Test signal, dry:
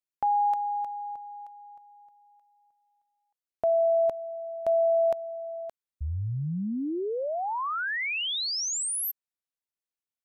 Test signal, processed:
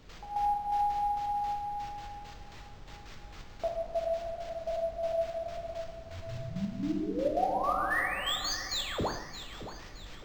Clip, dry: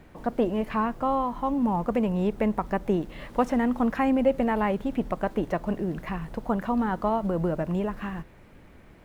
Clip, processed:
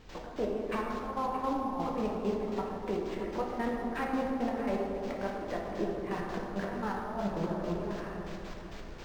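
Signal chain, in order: high-pass 250 Hz 12 dB/octave; in parallel at -1.5 dB: compression, threshold -35 dBFS; on the sum: peak limiter -22 dBFS; word length cut 8-bit, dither triangular; trance gate ".x..x...x.x." 167 bpm -12 dB; added noise brown -48 dBFS; on a send: echo whose repeats swap between lows and highs 310 ms, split 800 Hz, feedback 62%, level -7.5 dB; on the sum: plate-style reverb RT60 2.3 s, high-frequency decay 0.3×, DRR -2 dB; decimation joined by straight lines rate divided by 4×; trim -3.5 dB

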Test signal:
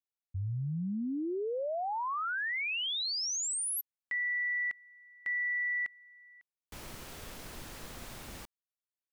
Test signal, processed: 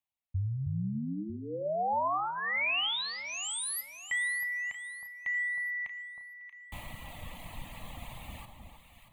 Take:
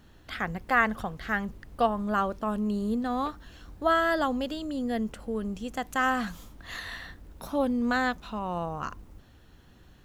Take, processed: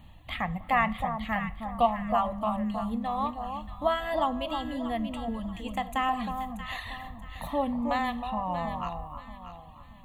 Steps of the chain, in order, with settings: treble shelf 6.5 kHz -7 dB; static phaser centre 1.5 kHz, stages 6; in parallel at -2 dB: compression, threshold -38 dBFS; on the sum: reverb removal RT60 1.5 s; on a send: echo whose repeats swap between lows and highs 316 ms, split 1.1 kHz, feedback 57%, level -5 dB; on the sum: two-slope reverb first 0.45 s, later 2.6 s, from -18 dB, DRR 13 dB; trim +1.5 dB

